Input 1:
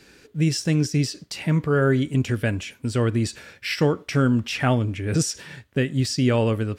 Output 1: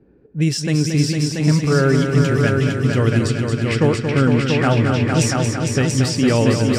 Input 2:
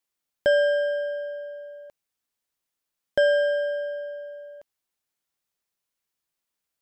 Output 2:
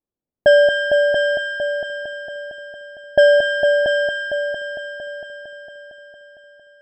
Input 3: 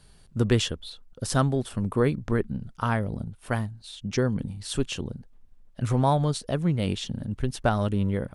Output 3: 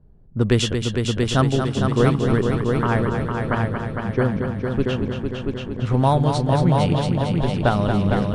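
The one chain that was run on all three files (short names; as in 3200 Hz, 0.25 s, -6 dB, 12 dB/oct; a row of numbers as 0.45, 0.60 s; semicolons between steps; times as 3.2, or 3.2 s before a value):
low-pass opened by the level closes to 440 Hz, open at -18.5 dBFS; on a send: multi-head echo 0.228 s, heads all three, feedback 56%, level -7 dB; on the sum: normalise peaks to -3 dBFS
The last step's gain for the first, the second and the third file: +3.0, +8.5, +4.0 dB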